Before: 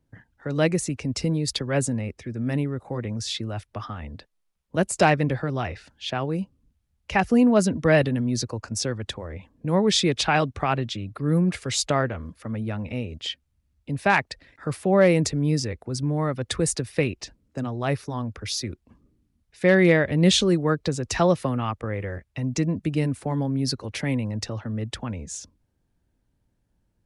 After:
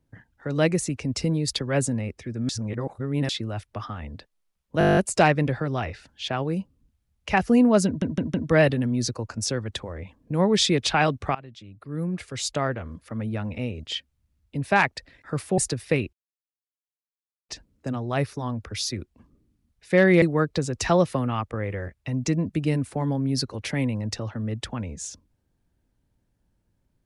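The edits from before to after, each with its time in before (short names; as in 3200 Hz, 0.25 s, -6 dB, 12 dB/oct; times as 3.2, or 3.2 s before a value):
2.49–3.29 reverse
4.79 stutter 0.02 s, 10 plays
7.68 stutter 0.16 s, 4 plays
10.69–12.59 fade in, from -21.5 dB
14.92–16.65 cut
17.2 insert silence 1.36 s
19.93–20.52 cut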